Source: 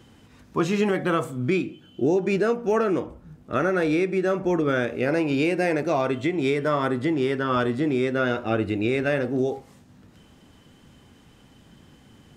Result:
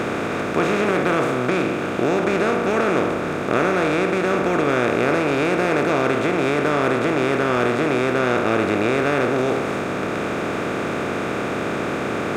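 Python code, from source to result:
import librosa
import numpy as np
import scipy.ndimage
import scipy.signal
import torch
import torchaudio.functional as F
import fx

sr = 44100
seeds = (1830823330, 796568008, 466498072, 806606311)

y = fx.bin_compress(x, sr, power=0.2)
y = F.gain(torch.from_numpy(y), -4.5).numpy()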